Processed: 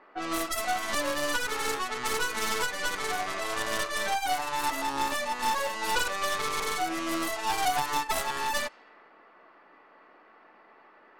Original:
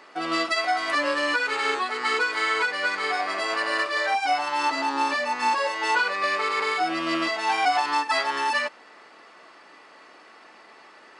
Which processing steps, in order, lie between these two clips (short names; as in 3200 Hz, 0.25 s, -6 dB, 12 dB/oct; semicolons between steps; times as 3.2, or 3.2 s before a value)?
tracing distortion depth 0.41 ms; low-pass opened by the level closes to 1600 Hz, open at -21.5 dBFS; gain -5 dB